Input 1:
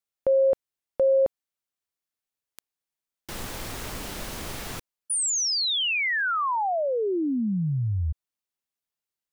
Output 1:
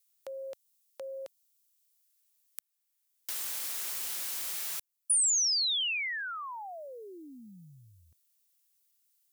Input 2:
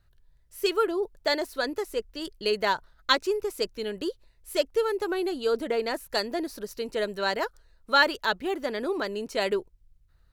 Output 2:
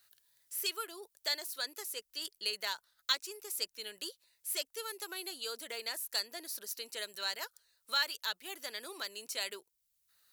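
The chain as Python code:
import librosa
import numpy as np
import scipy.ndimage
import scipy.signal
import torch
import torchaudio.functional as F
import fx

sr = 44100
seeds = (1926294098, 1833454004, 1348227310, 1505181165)

y = np.diff(x, prepend=0.0)
y = fx.band_squash(y, sr, depth_pct=40)
y = y * librosa.db_to_amplitude(2.5)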